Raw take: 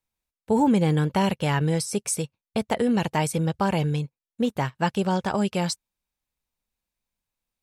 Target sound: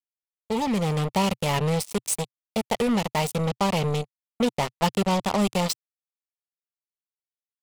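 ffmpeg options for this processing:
-af "acrusher=bits=3:mix=0:aa=0.5,dynaudnorm=f=390:g=5:m=2.51,equalizer=f=125:t=o:w=0.33:g=-8,equalizer=f=315:t=o:w=0.33:g=-10,equalizer=f=1600:t=o:w=0.33:g=-11,volume=0.562"

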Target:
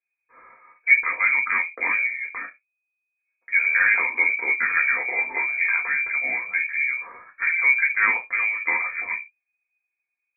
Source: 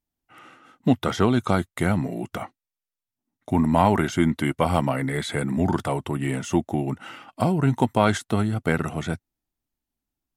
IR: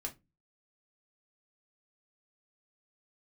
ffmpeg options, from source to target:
-filter_complex "[0:a]asettb=1/sr,asplit=3[s0][s1][s2];[s0]atrim=end=4.754[s3];[s1]atrim=start=4.75:end=6.83,asetpts=PTS-STARTPTS,afade=t=in:d=0.004:c=qsin,afade=t=out:st=2.076:d=0.004:c=qsin,asplit=2[s4][s5];[s5]adelay=13,volume=0.668[s6];[s4][s6]amix=inputs=2:normalize=0,atrim=end_sample=91728[s7];[s2]atrim=start=6.826[s8];[s3][s7]acrossfade=d=0.004:c1=hsin:c2=qsin[s9];[s9][s8]acrossfade=d=0.004:c1=qsin:c2=hsin[s10];[1:a]atrim=start_sample=2205,atrim=end_sample=6174[s11];[s10][s11]afir=irnorm=-1:irlink=0,lowpass=f=2100:t=q:w=0.5098,lowpass=f=2100:t=q:w=0.6013,lowpass=f=2100:t=q:w=0.9,lowpass=f=2100:t=q:w=2.563,afreqshift=-2500"

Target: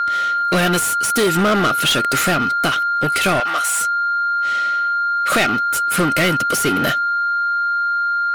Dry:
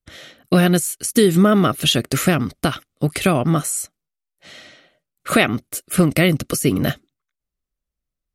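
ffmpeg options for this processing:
-filter_complex "[0:a]aeval=exprs='val(0)+0.0562*sin(2*PI*1400*n/s)':c=same,asplit=2[s0][s1];[s1]highpass=f=720:p=1,volume=15.8,asoftclip=type=tanh:threshold=0.794[s2];[s0][s2]amix=inputs=2:normalize=0,lowpass=f=6900:p=1,volume=0.501,asettb=1/sr,asplit=3[s3][s4][s5];[s3]atrim=end=3.404[s6];[s4]atrim=start=3.4:end=3.81,asetpts=PTS-STARTPTS,afade=t=in:d=0.004:c=qsin,afade=t=out:st=0.406:d=0.004:c=qsin,highpass=760[s7];[s5]atrim=start=3.806[s8];[s6][s7]acrossfade=d=0.004:c1=hsin:c2=qsin[s9];[s9][s8]acrossfade=d=0.004:c1=qsin:c2=hsin,volume=0.473"

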